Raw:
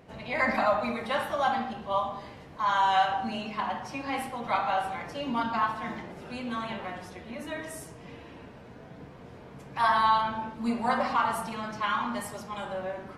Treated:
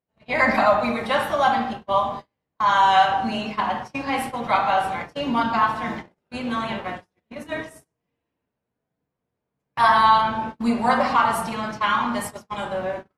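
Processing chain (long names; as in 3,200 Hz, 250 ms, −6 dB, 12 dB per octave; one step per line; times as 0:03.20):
noise gate −37 dBFS, range −42 dB
level +7.5 dB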